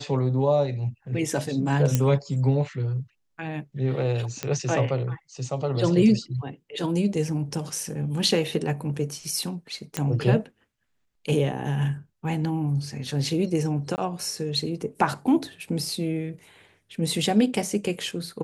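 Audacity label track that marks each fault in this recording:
1.950000	1.950000	pop -8 dBFS
4.430000	4.430000	pop -12 dBFS
9.970000	9.970000	pop -10 dBFS
13.960000	13.980000	dropout 19 ms

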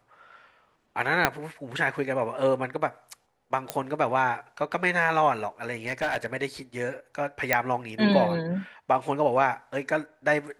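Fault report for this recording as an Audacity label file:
1.250000	1.250000	pop -4 dBFS
3.700000	3.700000	pop -11 dBFS
5.740000	6.340000	clipped -21.5 dBFS
7.530000	7.530000	pop -5 dBFS

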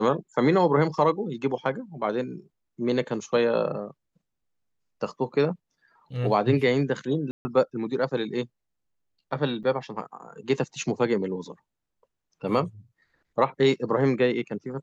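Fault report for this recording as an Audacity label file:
7.310000	7.450000	dropout 140 ms
9.630000	9.640000	dropout 7.2 ms

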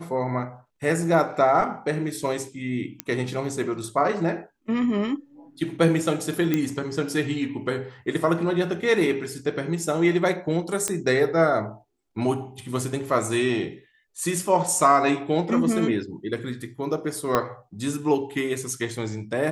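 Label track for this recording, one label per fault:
3.000000	3.000000	pop -10 dBFS
6.540000	6.540000	pop -9 dBFS
10.880000	10.880000	pop -10 dBFS
17.350000	17.350000	pop -7 dBFS

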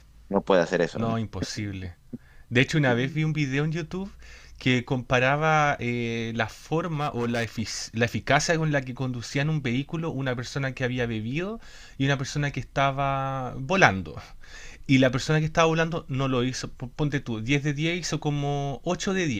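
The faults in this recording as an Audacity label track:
6.850000	7.620000	clipped -22.5 dBFS

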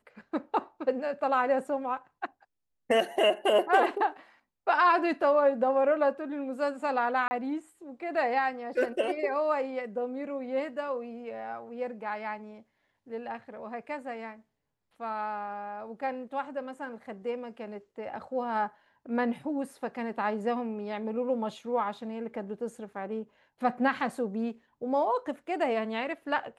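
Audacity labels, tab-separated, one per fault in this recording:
7.280000	7.310000	dropout 30 ms

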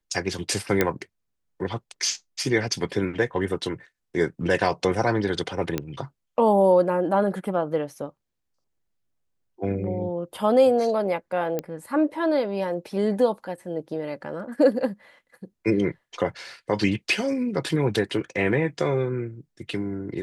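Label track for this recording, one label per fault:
0.810000	0.810000	pop -6 dBFS
5.780000	5.780000	pop -11 dBFS
11.590000	11.590000	pop -14 dBFS

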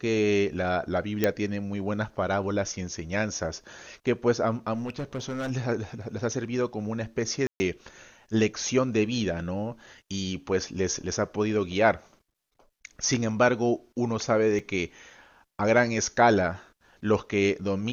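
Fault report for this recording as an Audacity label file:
1.240000	1.240000	pop -9 dBFS
4.730000	5.510000	clipped -28 dBFS
7.470000	7.600000	dropout 130 ms
14.590000	14.590000	dropout 4.5 ms

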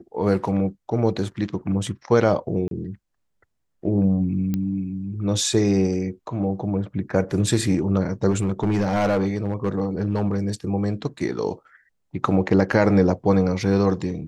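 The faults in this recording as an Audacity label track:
2.680000	2.710000	dropout 32 ms
4.540000	4.540000	pop -13 dBFS
8.300000	10.500000	clipped -15.5 dBFS

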